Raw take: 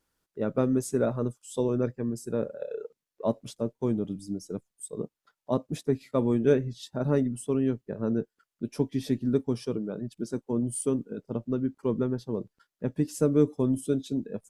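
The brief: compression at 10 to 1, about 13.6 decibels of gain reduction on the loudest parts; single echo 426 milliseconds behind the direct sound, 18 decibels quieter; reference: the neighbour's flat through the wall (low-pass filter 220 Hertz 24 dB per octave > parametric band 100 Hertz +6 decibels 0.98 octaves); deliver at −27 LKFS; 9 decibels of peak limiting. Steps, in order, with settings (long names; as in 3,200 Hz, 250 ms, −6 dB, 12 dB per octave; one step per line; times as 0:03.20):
downward compressor 10 to 1, threshold −31 dBFS
brickwall limiter −28.5 dBFS
low-pass filter 220 Hz 24 dB per octave
parametric band 100 Hz +6 dB 0.98 octaves
single-tap delay 426 ms −18 dB
level +16.5 dB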